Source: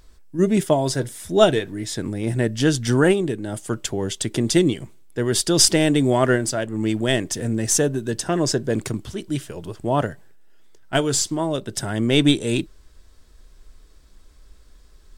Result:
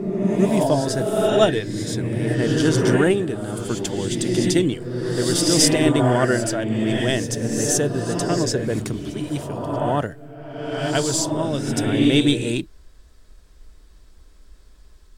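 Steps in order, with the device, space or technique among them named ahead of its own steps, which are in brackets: reverse reverb (reverse; reverberation RT60 1.7 s, pre-delay 70 ms, DRR 1 dB; reverse); trim -2 dB

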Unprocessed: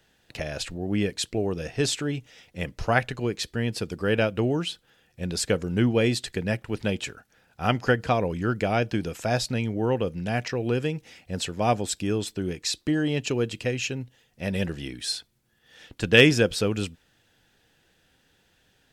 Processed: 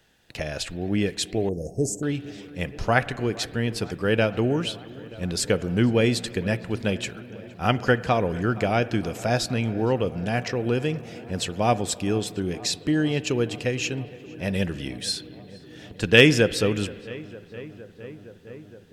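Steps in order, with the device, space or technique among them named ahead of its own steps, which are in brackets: dub delay into a spring reverb (filtered feedback delay 465 ms, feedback 83%, low-pass 2.6 kHz, level -20 dB; spring tank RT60 2.2 s, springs 45/52 ms, chirp 75 ms, DRR 17 dB); 1.49–2.03 s: elliptic band-stop 680–6600 Hz, stop band 40 dB; trim +1.5 dB

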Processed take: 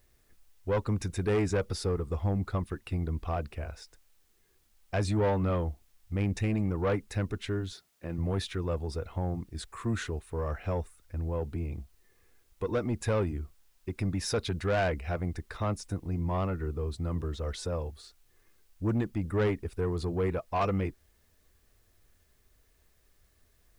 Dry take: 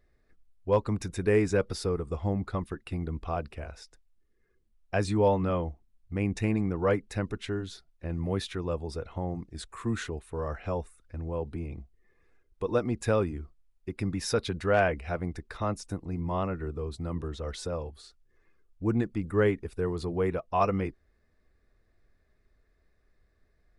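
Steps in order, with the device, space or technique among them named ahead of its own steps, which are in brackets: 7.72–8.18 s: high-pass 140 Hz 12 dB/octave; open-reel tape (saturation -22.5 dBFS, distortion -13 dB; peaking EQ 90 Hz +4.5 dB 0.8 oct; white noise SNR 40 dB)

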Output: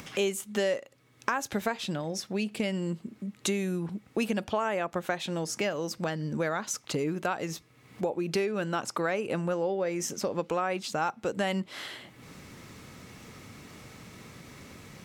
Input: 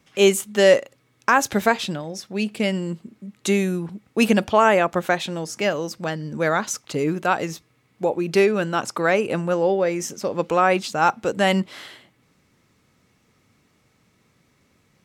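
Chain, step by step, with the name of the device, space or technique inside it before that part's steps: upward and downward compression (upward compressor, threshold -34 dBFS; compression 4:1, threshold -28 dBFS, peak gain reduction 15.5 dB)

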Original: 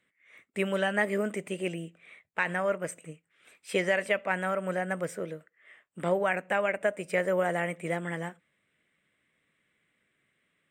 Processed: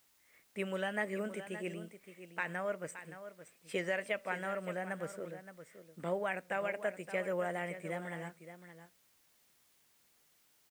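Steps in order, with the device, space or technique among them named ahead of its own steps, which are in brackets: plain cassette with noise reduction switched in (tape noise reduction on one side only decoder only; wow and flutter; white noise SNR 30 dB); delay 570 ms -12 dB; trim -8.5 dB

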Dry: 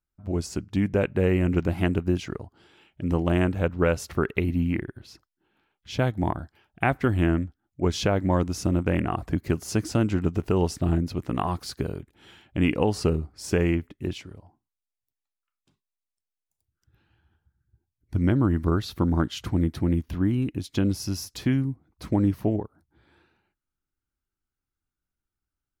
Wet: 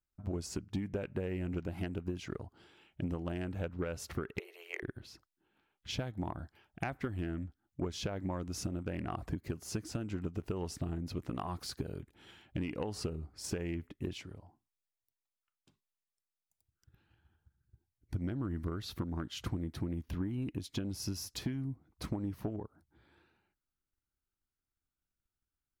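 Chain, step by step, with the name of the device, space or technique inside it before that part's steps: 4.39–4.83 s: steep high-pass 390 Hz 96 dB/octave; drum-bus smash (transient shaper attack +7 dB, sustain +3 dB; compression 6:1, threshold -25 dBFS, peak gain reduction 13.5 dB; saturation -18.5 dBFS, distortion -16 dB); trim -6.5 dB

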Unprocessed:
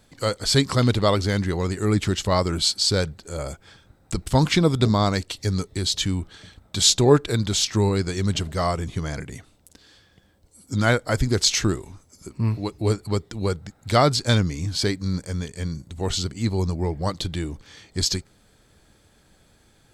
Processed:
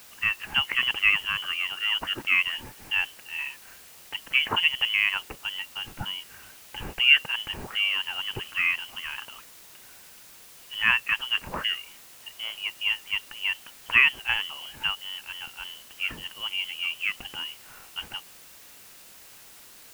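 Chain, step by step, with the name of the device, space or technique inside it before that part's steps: scrambled radio voice (band-pass 360–2800 Hz; frequency inversion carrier 3.2 kHz; white noise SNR 20 dB)

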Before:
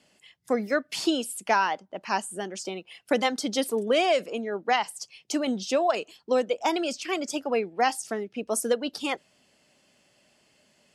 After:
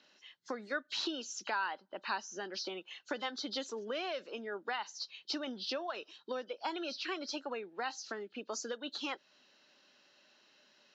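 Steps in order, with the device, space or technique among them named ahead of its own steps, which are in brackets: hearing aid with frequency lowering (knee-point frequency compression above 3 kHz 1.5:1; compression 3:1, threshold -34 dBFS, peak gain reduction 12 dB; cabinet simulation 360–6100 Hz, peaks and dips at 470 Hz -5 dB, 690 Hz -8 dB, 1.5 kHz +5 dB, 2.2 kHz -6 dB, 3.9 kHz +3 dB)

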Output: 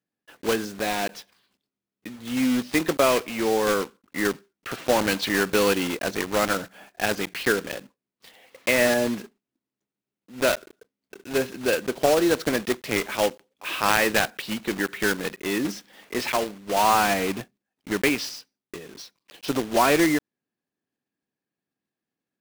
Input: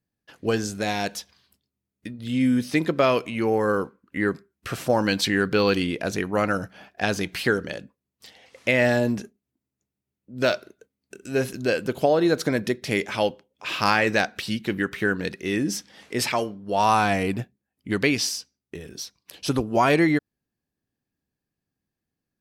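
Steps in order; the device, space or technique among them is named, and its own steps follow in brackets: early digital voice recorder (band-pass 220–3700 Hz; block-companded coder 3-bit)

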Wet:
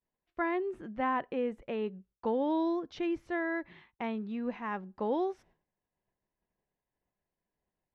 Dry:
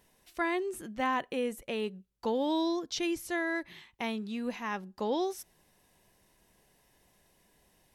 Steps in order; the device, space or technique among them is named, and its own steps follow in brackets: hearing-loss simulation (low-pass 1.8 kHz 12 dB/octave; expander -56 dBFS)

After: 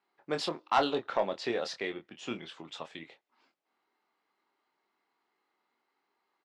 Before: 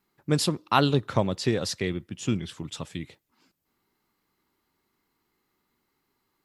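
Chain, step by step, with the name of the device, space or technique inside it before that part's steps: intercom (band-pass 440–3600 Hz; peaking EQ 730 Hz +5 dB 0.56 oct; saturation -14 dBFS, distortion -12 dB; doubling 25 ms -7.5 dB); trim -2.5 dB

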